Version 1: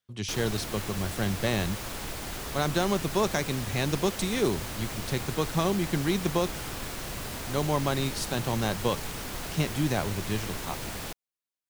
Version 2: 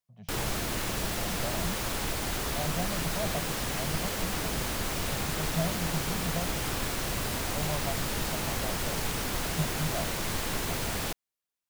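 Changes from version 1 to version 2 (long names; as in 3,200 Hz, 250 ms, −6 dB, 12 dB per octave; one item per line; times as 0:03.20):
speech: add pair of resonant band-passes 330 Hz, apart 2 octaves
background +4.5 dB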